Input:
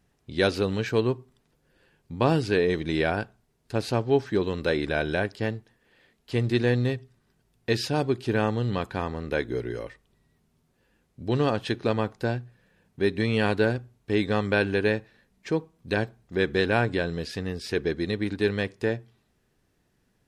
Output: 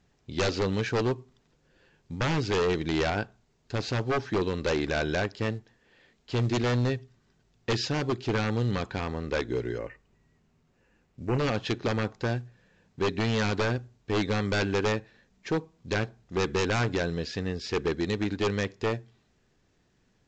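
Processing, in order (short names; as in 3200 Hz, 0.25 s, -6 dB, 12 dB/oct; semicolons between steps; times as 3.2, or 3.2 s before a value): wavefolder -20 dBFS; 9.78–11.39 brick-wall FIR low-pass 3000 Hz; µ-law 128 kbps 16000 Hz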